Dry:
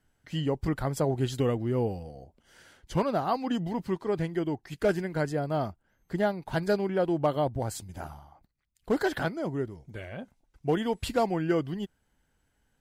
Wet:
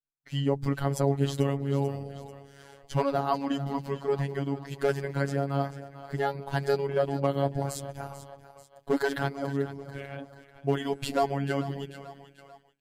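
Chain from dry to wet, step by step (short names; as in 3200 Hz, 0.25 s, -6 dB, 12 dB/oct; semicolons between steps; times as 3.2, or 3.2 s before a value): split-band echo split 540 Hz, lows 0.196 s, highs 0.44 s, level -13.5 dB; expander -49 dBFS; robotiser 139 Hz; gain +2.5 dB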